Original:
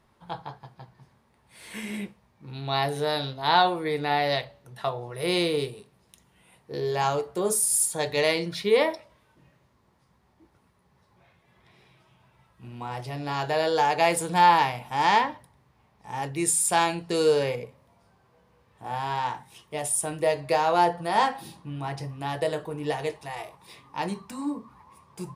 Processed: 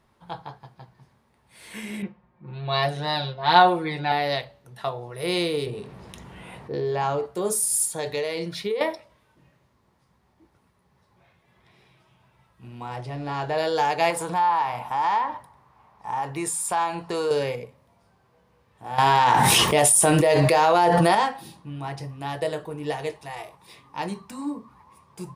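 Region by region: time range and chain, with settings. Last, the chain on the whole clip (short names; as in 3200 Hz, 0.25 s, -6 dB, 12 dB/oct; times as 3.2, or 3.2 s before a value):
2.02–4.12 low-pass opened by the level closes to 1500 Hz, open at -18.5 dBFS + comb 5.6 ms, depth 94%
5.66–7.26 LPF 1900 Hz 6 dB/oct + fast leveller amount 50%
7.92–8.81 HPF 41 Hz + dynamic EQ 460 Hz, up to +8 dB, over -33 dBFS, Q 3.6 + compressor 10:1, threshold -23 dBFS
12.96–13.58 G.711 law mismatch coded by mu + steep low-pass 11000 Hz + high shelf 2900 Hz -9 dB
14.1–17.31 bell 1000 Hz +13 dB 1.3 oct + compressor 2.5:1, threshold -26 dBFS
18.98–21.15 low shelf 84 Hz -10.5 dB + fast leveller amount 100%
whole clip: dry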